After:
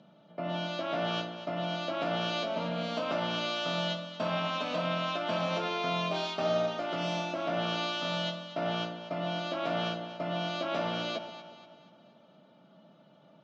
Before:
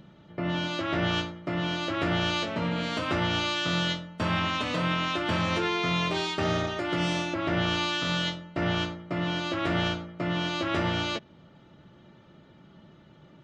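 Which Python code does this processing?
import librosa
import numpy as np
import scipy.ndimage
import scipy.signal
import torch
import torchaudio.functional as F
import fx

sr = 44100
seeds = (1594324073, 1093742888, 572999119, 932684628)

y = fx.cabinet(x, sr, low_hz=180.0, low_slope=24, high_hz=6100.0, hz=(360.0, 650.0, 1900.0), db=(-9, 10, -9))
y = fx.echo_alternate(y, sr, ms=120, hz=880.0, feedback_pct=66, wet_db=-8.5)
y = y * 10.0 ** (-4.5 / 20.0)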